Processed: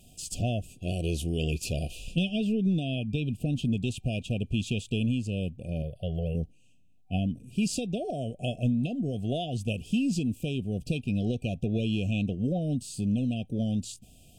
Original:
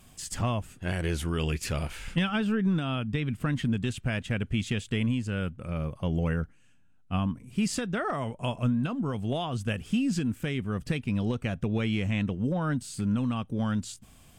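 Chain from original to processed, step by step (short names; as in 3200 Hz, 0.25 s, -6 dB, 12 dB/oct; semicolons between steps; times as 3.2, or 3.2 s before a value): FFT band-reject 760–2400 Hz; 5.82–6.35 fixed phaser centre 1400 Hz, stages 8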